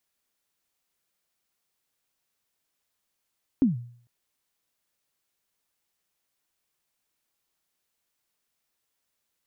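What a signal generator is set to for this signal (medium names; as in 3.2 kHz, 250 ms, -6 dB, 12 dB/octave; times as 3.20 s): kick drum length 0.45 s, from 290 Hz, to 120 Hz, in 142 ms, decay 0.54 s, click off, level -14 dB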